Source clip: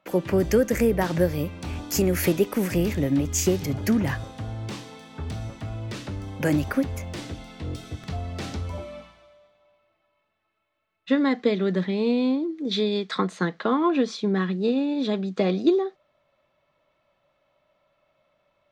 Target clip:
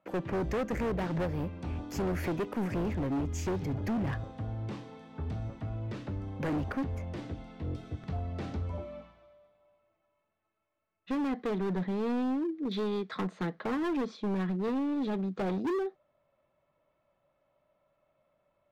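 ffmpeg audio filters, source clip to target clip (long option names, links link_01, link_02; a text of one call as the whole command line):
ffmpeg -i in.wav -af "lowpass=frequency=1100:poles=1,asoftclip=type=hard:threshold=-25dB,volume=-3.5dB" out.wav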